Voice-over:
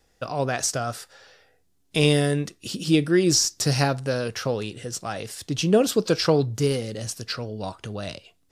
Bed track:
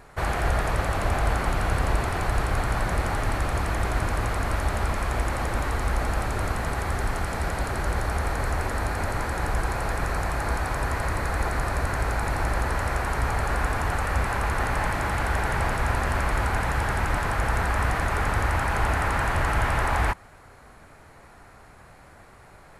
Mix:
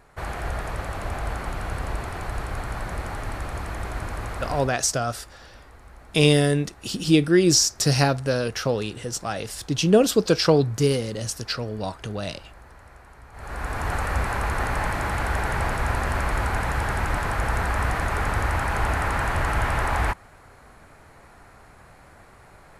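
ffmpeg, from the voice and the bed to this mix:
-filter_complex "[0:a]adelay=4200,volume=2dB[a];[1:a]volume=16.5dB,afade=t=out:st=4.51:d=0.25:silence=0.149624,afade=t=in:st=13.32:d=0.62:silence=0.0794328[b];[a][b]amix=inputs=2:normalize=0"

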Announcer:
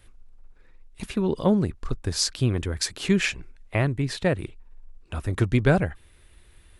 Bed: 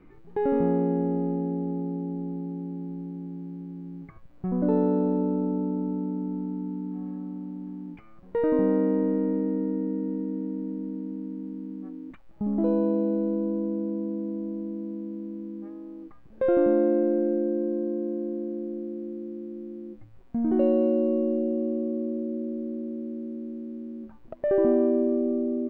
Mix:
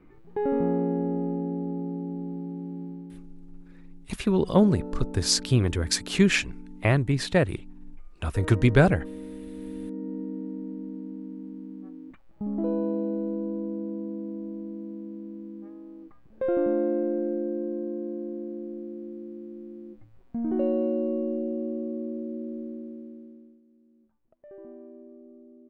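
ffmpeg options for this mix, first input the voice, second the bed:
-filter_complex "[0:a]adelay=3100,volume=1.5dB[a];[1:a]volume=8.5dB,afade=t=out:st=2.83:d=0.46:silence=0.251189,afade=t=in:st=9.49:d=0.71:silence=0.316228,afade=t=out:st=22.6:d=1.01:silence=0.0944061[b];[a][b]amix=inputs=2:normalize=0"

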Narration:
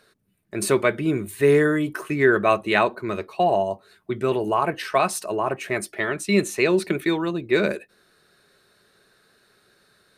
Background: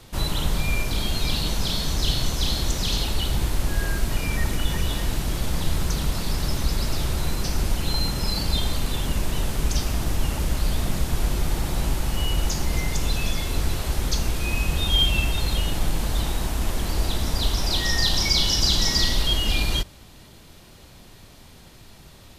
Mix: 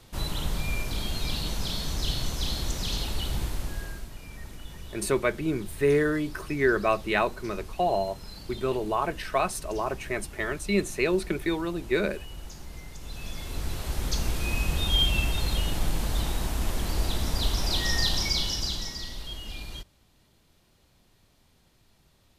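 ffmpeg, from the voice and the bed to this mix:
-filter_complex "[0:a]adelay=4400,volume=-5.5dB[a];[1:a]volume=8.5dB,afade=t=out:st=3.38:d=0.73:silence=0.251189,afade=t=in:st=13:d=1.3:silence=0.188365,afade=t=out:st=17.97:d=1:silence=0.237137[b];[a][b]amix=inputs=2:normalize=0"

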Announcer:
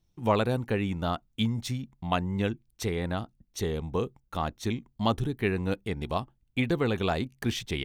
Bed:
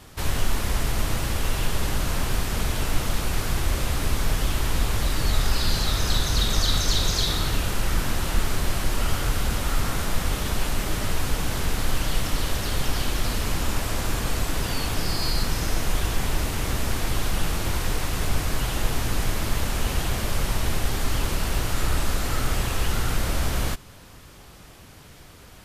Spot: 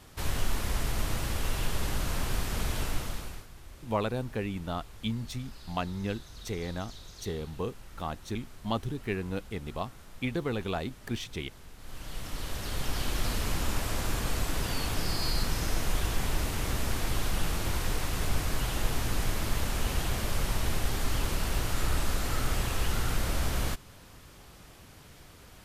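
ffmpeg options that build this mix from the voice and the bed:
-filter_complex "[0:a]adelay=3650,volume=-5dB[a];[1:a]volume=14dB,afade=t=out:st=2.8:d=0.67:silence=0.112202,afade=t=in:st=11.78:d=1.45:silence=0.1[b];[a][b]amix=inputs=2:normalize=0"

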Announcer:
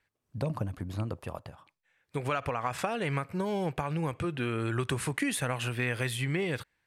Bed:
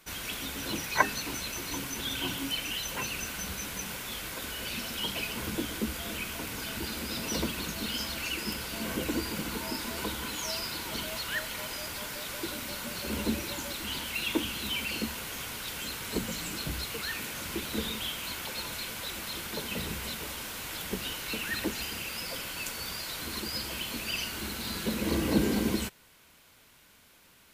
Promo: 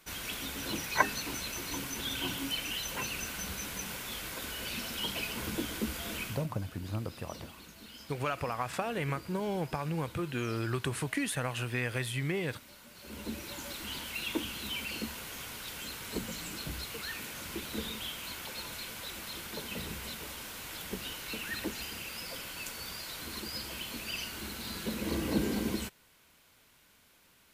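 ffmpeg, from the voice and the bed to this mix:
-filter_complex "[0:a]adelay=5950,volume=-2.5dB[a];[1:a]volume=10dB,afade=t=out:st=6.22:d=0.25:silence=0.188365,afade=t=in:st=12.94:d=0.78:silence=0.251189[b];[a][b]amix=inputs=2:normalize=0"

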